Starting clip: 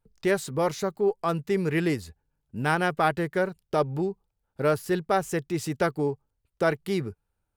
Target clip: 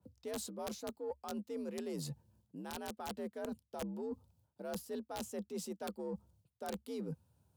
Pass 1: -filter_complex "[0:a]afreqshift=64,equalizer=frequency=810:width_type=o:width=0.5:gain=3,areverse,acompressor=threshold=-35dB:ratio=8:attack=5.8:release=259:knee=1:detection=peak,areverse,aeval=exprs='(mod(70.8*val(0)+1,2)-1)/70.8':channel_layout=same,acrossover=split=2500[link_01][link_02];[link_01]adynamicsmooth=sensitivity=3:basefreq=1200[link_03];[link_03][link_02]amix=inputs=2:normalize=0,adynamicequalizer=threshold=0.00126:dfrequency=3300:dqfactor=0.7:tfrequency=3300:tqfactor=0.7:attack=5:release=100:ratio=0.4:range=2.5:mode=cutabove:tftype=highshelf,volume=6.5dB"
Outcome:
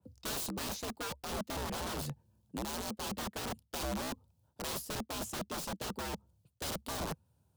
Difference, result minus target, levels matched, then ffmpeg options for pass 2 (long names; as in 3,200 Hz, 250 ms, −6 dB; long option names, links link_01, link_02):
downward compressor: peak gain reduction −9 dB
-filter_complex "[0:a]afreqshift=64,equalizer=frequency=810:width_type=o:width=0.5:gain=3,areverse,acompressor=threshold=-45dB:ratio=8:attack=5.8:release=259:knee=1:detection=peak,areverse,aeval=exprs='(mod(70.8*val(0)+1,2)-1)/70.8':channel_layout=same,acrossover=split=2500[link_01][link_02];[link_01]adynamicsmooth=sensitivity=3:basefreq=1200[link_03];[link_03][link_02]amix=inputs=2:normalize=0,adynamicequalizer=threshold=0.00126:dfrequency=3300:dqfactor=0.7:tfrequency=3300:tqfactor=0.7:attack=5:release=100:ratio=0.4:range=2.5:mode=cutabove:tftype=highshelf,volume=6.5dB"